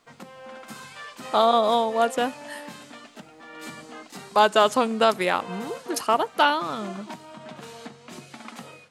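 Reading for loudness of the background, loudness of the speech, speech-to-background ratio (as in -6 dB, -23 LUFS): -40.5 LUFS, -22.0 LUFS, 18.5 dB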